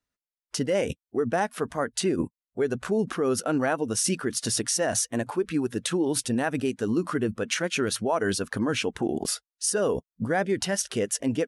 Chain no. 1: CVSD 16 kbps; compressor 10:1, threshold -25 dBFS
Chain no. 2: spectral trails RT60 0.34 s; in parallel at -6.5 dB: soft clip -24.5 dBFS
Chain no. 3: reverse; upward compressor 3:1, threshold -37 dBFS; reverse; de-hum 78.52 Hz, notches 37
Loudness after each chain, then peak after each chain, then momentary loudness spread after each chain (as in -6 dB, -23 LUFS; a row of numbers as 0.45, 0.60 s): -32.0, -23.5, -27.5 LUFS; -16.5, -10.5, -13.5 dBFS; 4, 4, 4 LU